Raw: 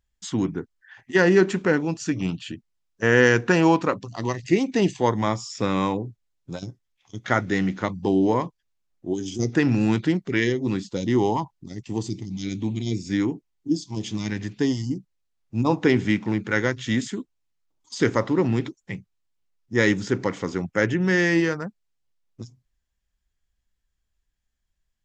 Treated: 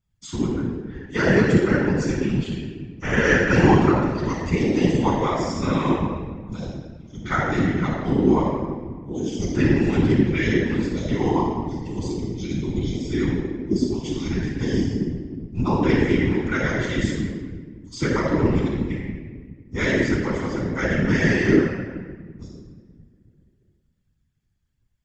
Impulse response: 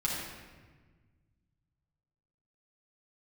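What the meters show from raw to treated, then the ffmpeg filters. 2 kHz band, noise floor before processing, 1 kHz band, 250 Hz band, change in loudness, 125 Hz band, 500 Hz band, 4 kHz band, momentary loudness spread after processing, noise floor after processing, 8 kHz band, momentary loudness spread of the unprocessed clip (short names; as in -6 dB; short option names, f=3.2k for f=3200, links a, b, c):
+0.5 dB, -76 dBFS, +1.5 dB, +2.5 dB, +1.5 dB, +4.0 dB, +0.5 dB, -0.5 dB, 15 LU, -67 dBFS, -1.5 dB, 16 LU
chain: -filter_complex "[1:a]atrim=start_sample=2205[a];[0:a][a]afir=irnorm=-1:irlink=0,afftfilt=real='hypot(re,im)*cos(2*PI*random(0))':imag='hypot(re,im)*sin(2*PI*random(1))':win_size=512:overlap=0.75"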